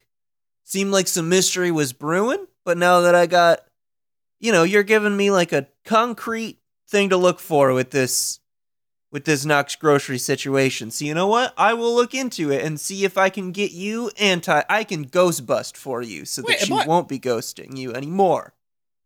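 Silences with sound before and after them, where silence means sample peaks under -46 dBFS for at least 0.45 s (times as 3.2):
3.67–4.41
8.36–9.13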